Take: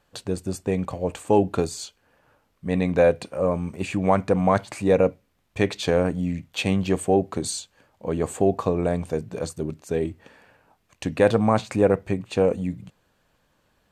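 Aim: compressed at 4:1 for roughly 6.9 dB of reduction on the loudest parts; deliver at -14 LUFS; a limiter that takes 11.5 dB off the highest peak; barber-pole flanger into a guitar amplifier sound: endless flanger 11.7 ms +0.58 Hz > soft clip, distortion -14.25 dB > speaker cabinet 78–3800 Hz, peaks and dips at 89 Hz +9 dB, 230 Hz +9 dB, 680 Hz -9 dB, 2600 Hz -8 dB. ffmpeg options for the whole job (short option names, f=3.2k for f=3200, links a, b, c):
-filter_complex "[0:a]acompressor=threshold=-21dB:ratio=4,alimiter=limit=-21dB:level=0:latency=1,asplit=2[a][b];[b]adelay=11.7,afreqshift=0.58[c];[a][c]amix=inputs=2:normalize=1,asoftclip=threshold=-30dB,highpass=78,equalizer=f=89:t=q:w=4:g=9,equalizer=f=230:t=q:w=4:g=9,equalizer=f=680:t=q:w=4:g=-9,equalizer=f=2.6k:t=q:w=4:g=-8,lowpass=f=3.8k:w=0.5412,lowpass=f=3.8k:w=1.3066,volume=23dB"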